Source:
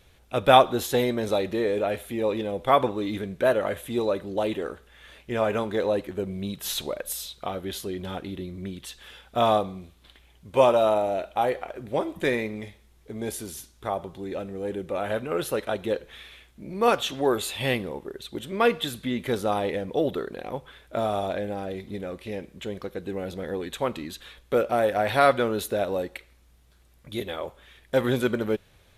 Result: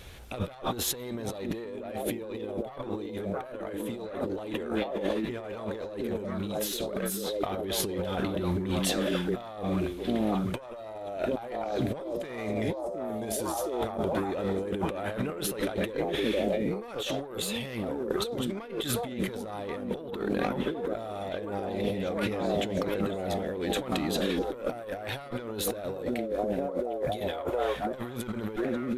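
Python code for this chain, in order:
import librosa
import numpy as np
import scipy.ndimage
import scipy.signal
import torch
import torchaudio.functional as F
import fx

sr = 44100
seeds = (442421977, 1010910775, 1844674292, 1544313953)

y = fx.diode_clip(x, sr, knee_db=-19.5)
y = fx.echo_stepped(y, sr, ms=715, hz=240.0, octaves=0.7, feedback_pct=70, wet_db=-2.0)
y = fx.over_compress(y, sr, threshold_db=-37.0, ratio=-1.0)
y = y * librosa.db_to_amplitude(3.5)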